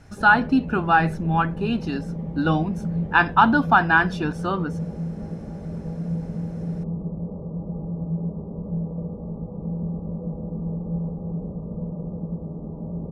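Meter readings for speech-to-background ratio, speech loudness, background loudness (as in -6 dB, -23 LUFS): 10.0 dB, -21.0 LUFS, -31.0 LUFS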